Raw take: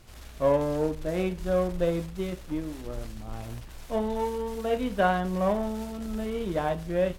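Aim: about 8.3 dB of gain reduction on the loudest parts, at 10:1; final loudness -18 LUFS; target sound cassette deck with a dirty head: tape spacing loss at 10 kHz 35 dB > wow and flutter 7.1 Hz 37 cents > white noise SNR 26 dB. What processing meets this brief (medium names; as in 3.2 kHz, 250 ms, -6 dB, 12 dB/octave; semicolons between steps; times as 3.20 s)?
compression 10:1, threshold -26 dBFS; tape spacing loss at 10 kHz 35 dB; wow and flutter 7.1 Hz 37 cents; white noise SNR 26 dB; trim +16.5 dB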